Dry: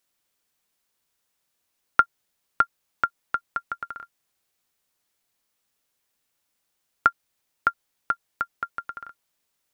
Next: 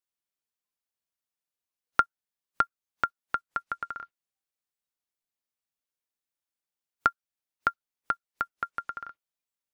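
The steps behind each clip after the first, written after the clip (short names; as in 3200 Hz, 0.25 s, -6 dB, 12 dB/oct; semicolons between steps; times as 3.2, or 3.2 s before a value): spectral noise reduction 17 dB; in parallel at +1 dB: compressor, threshold -28 dBFS, peak gain reduction 15.5 dB; on the sum: gain -6.5 dB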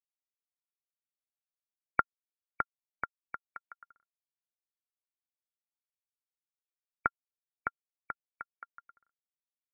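power-law curve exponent 2; gate -57 dBFS, range -9 dB; brick-wall FIR low-pass 2300 Hz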